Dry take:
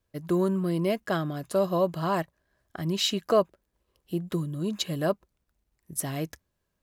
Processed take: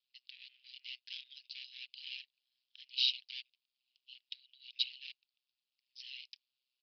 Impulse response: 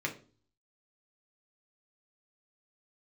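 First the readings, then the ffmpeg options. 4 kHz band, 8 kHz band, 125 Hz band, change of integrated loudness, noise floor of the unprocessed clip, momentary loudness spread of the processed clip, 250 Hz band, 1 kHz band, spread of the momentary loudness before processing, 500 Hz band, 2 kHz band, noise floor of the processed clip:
-2.0 dB, under -25 dB, under -40 dB, -11.5 dB, -79 dBFS, 26 LU, under -40 dB, under -40 dB, 10 LU, under -40 dB, -10.0 dB, under -85 dBFS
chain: -af "aresample=16000,asoftclip=type=tanh:threshold=-28dB,aresample=44100,asuperpass=centerf=4300:order=12:qfactor=0.96,aresample=11025,aresample=44100,aeval=exprs='val(0)*sin(2*PI*64*n/s)':c=same,volume=6dB"

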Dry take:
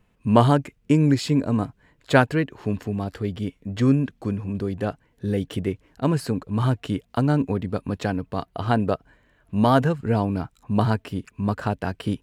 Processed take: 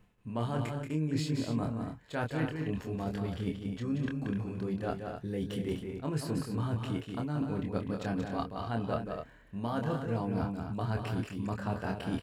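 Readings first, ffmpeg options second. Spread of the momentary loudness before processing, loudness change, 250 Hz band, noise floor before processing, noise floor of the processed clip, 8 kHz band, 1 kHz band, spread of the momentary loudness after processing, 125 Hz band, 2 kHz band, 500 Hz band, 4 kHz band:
10 LU, -11.0 dB, -10.5 dB, -64 dBFS, -56 dBFS, -8.5 dB, -12.5 dB, 4 LU, -10.5 dB, -12.0 dB, -11.5 dB, -10.0 dB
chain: -filter_complex "[0:a]areverse,acompressor=threshold=-32dB:ratio=10,areverse,asplit=2[a][b];[b]adelay=26,volume=-4.5dB[c];[a][c]amix=inputs=2:normalize=0,aecho=1:1:180.8|250.7:0.501|0.398"

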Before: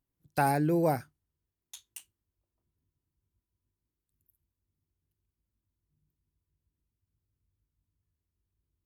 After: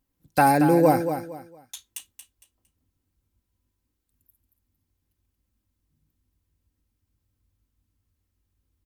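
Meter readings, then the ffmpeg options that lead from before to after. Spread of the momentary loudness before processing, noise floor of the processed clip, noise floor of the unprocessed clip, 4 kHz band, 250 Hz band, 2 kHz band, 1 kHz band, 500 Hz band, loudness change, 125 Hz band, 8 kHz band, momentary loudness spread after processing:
20 LU, -79 dBFS, under -85 dBFS, +8.5 dB, +9.0 dB, +8.5 dB, +9.5 dB, +9.0 dB, +8.0 dB, +4.5 dB, +8.5 dB, 22 LU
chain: -af "aecho=1:1:3.8:0.42,aecho=1:1:229|458|687:0.355|0.0958|0.0259,volume=7.5dB"

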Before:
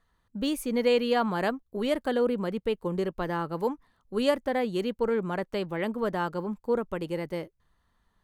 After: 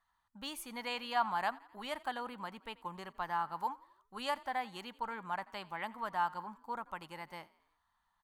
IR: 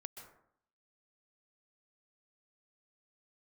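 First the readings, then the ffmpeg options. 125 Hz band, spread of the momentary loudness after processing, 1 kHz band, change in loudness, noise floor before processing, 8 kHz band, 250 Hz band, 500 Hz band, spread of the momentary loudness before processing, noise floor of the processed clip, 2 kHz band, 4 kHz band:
-18.5 dB, 11 LU, -2.0 dB, -10.5 dB, -72 dBFS, n/a, -19.5 dB, -19.5 dB, 8 LU, -80 dBFS, -5.5 dB, -6.5 dB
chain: -filter_complex "[0:a]lowshelf=f=630:t=q:w=3:g=-10.5,asplit=2[a][b];[b]asplit=4[c][d][e][f];[c]adelay=86,afreqshift=34,volume=-21.5dB[g];[d]adelay=172,afreqshift=68,volume=-26.9dB[h];[e]adelay=258,afreqshift=102,volume=-32.2dB[i];[f]adelay=344,afreqshift=136,volume=-37.6dB[j];[g][h][i][j]amix=inputs=4:normalize=0[k];[a][k]amix=inputs=2:normalize=0,volume=-7dB"

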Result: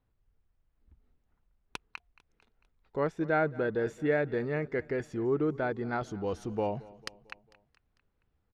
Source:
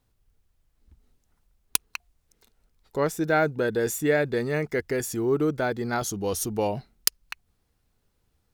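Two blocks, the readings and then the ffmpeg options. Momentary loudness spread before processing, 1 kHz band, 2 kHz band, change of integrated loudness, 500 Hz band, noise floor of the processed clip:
10 LU, -5.0 dB, -6.0 dB, -5.5 dB, -5.0 dB, -77 dBFS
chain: -filter_complex "[0:a]lowpass=2.4k,asplit=2[a][b];[b]aecho=0:1:224|448|672|896:0.0891|0.0481|0.026|0.014[c];[a][c]amix=inputs=2:normalize=0,volume=-5dB"

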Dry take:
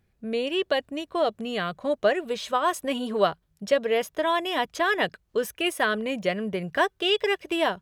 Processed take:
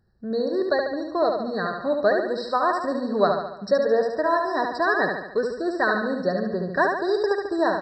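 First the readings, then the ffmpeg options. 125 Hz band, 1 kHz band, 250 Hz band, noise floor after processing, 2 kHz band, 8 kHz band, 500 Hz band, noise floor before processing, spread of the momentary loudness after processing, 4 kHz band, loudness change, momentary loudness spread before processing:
+3.0 dB, +3.0 dB, +3.5 dB, -38 dBFS, +1.5 dB, under -10 dB, +3.5 dB, -69 dBFS, 5 LU, -8.5 dB, +2.5 dB, 6 LU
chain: -af "aresample=16000,aresample=44100,aecho=1:1:72|144|216|288|360|432|504:0.596|0.322|0.174|0.0938|0.0506|0.0274|0.0148,afftfilt=real='re*eq(mod(floor(b*sr/1024/1900),2),0)':imag='im*eq(mod(floor(b*sr/1024/1900),2),0)':win_size=1024:overlap=0.75,volume=1.5dB"

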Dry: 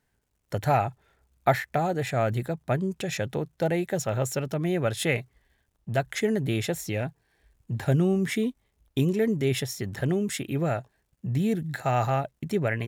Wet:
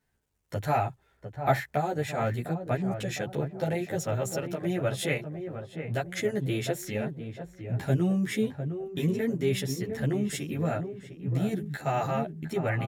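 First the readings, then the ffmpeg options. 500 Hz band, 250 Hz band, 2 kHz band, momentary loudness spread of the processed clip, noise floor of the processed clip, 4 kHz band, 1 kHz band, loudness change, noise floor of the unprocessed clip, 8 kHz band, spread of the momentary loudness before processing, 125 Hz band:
-2.5 dB, -2.0 dB, -3.0 dB, 8 LU, -68 dBFS, -3.0 dB, -2.5 dB, -3.0 dB, -74 dBFS, -3.0 dB, 7 LU, -2.0 dB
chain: -filter_complex "[0:a]asplit=2[a][b];[b]adelay=705,lowpass=f=1.2k:p=1,volume=-8dB,asplit=2[c][d];[d]adelay=705,lowpass=f=1.2k:p=1,volume=0.5,asplit=2[e][f];[f]adelay=705,lowpass=f=1.2k:p=1,volume=0.5,asplit=2[g][h];[h]adelay=705,lowpass=f=1.2k:p=1,volume=0.5,asplit=2[i][j];[j]adelay=705,lowpass=f=1.2k:p=1,volume=0.5,asplit=2[k][l];[l]adelay=705,lowpass=f=1.2k:p=1,volume=0.5[m];[c][e][g][i][k][m]amix=inputs=6:normalize=0[n];[a][n]amix=inputs=2:normalize=0,asplit=2[o][p];[p]adelay=11.6,afreqshift=0.6[q];[o][q]amix=inputs=2:normalize=1"

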